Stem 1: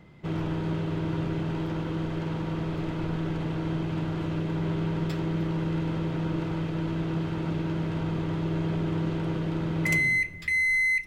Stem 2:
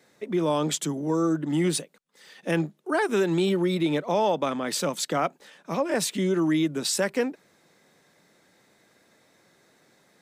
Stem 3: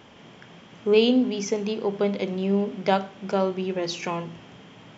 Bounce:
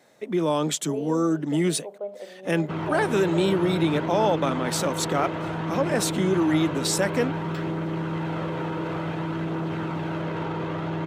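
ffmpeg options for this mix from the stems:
-filter_complex "[0:a]aphaser=in_gain=1:out_gain=1:delay=2.4:decay=0.26:speed=0.56:type=triangular,equalizer=f=980:w=0.4:g=10,adelay=2450,volume=-1dB[a];[1:a]volume=1dB[b];[2:a]bandpass=f=620:t=q:w=4.9:csg=0,volume=-2.5dB[c];[a][c]amix=inputs=2:normalize=0,highpass=110,alimiter=limit=-21.5dB:level=0:latency=1:release=14,volume=0dB[d];[b][d]amix=inputs=2:normalize=0,bandreject=f=4.8k:w=25"

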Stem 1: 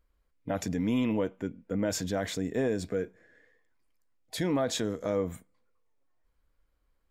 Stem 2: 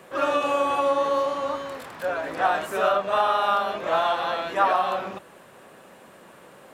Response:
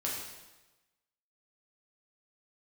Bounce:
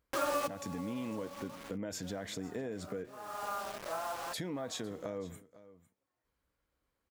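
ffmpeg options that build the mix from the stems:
-filter_complex "[0:a]highpass=79,acompressor=threshold=-36dB:ratio=3,volume=-1.5dB,asplit=3[a][b][c];[b]volume=-19dB[d];[1:a]lowpass=f=2.3k:w=0.5412,lowpass=f=2.3k:w=1.3066,acrusher=bits=4:mix=0:aa=0.000001,volume=-2.5dB,afade=t=out:st=1.58:d=0.78:silence=0.266073[e];[c]apad=whole_len=297144[f];[e][f]sidechaincompress=threshold=-59dB:ratio=6:attack=9.3:release=282[g];[d]aecho=0:1:504:1[h];[a][g][h]amix=inputs=3:normalize=0,acompressor=threshold=-35dB:ratio=2"

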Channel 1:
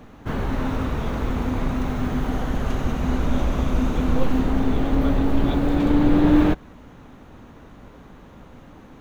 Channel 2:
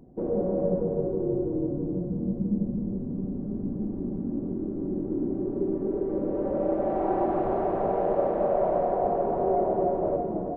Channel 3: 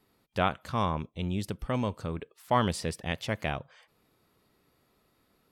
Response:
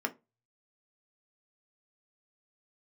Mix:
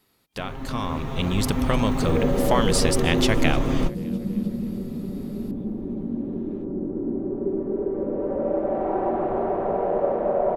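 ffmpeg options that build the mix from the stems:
-filter_complex "[0:a]aecho=1:1:7.5:0.77,acontrast=54,bandreject=f=1.5k:w=12,adelay=100,volume=-19dB[a];[1:a]adelay=1850,volume=-10.5dB,asplit=2[b][c];[c]volume=-14.5dB[d];[2:a]highshelf=f=2.1k:g=8.5,acompressor=threshold=-30dB:ratio=6,volume=0dB,asplit=3[e][f][g];[f]volume=-22.5dB[h];[g]apad=whole_len=401906[i];[a][i]sidechaingate=range=-31dB:threshold=-57dB:ratio=16:detection=peak[j];[3:a]atrim=start_sample=2205[k];[d][k]afir=irnorm=-1:irlink=0[l];[h]aecho=0:1:303|606|909|1212|1515|1818|2121|2424:1|0.54|0.292|0.157|0.085|0.0459|0.0248|0.0134[m];[j][b][e][l][m]amix=inputs=5:normalize=0,dynaudnorm=f=200:g=11:m=11dB"

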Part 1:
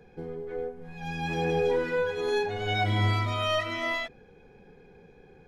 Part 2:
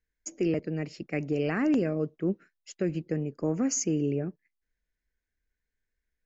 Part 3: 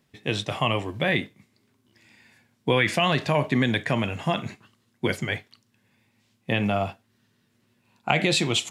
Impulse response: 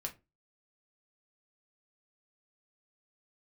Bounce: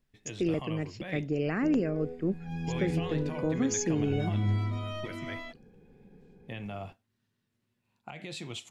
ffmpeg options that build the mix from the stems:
-filter_complex "[0:a]equalizer=f=210:w=0.7:g=13,acrossover=split=210[a][b];[b]acompressor=threshold=-25dB:ratio=6[c];[a][c]amix=inputs=2:normalize=0,adelay=1450,volume=-12dB[d];[1:a]volume=-2.5dB[e];[2:a]alimiter=limit=-15dB:level=0:latency=1:release=446,volume=-14dB[f];[d][e][f]amix=inputs=3:normalize=0,lowshelf=f=76:g=11"

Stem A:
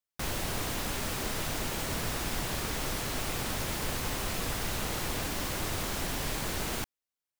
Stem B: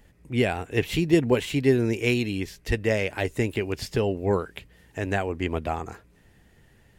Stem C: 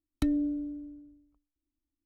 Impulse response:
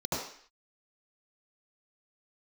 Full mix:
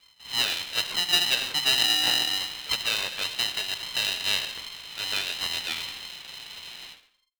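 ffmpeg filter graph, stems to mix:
-filter_complex "[0:a]volume=-11dB,asplit=2[a][b];[b]volume=-7dB[c];[1:a]highshelf=f=4k:g=-11.5,volume=-3.5dB,asplit=3[d][e][f];[e]volume=-19.5dB[g];[2:a]acompressor=threshold=-30dB:ratio=6,adelay=1500,volume=-1dB,asplit=2[h][i];[i]volume=-8.5dB[j];[f]apad=whole_len=326007[k];[a][k]sidechaingate=range=-33dB:threshold=-52dB:ratio=16:detection=peak[l];[3:a]atrim=start_sample=2205[m];[c][g][j]amix=inputs=3:normalize=0[n];[n][m]afir=irnorm=-1:irlink=0[o];[l][d][h][o]amix=inputs=4:normalize=0,lowpass=f=3.1k:t=q:w=0.5098,lowpass=f=3.1k:t=q:w=0.6013,lowpass=f=3.1k:t=q:w=0.9,lowpass=f=3.1k:t=q:w=2.563,afreqshift=-3700,aeval=exprs='val(0)*sgn(sin(2*PI*530*n/s))':c=same"

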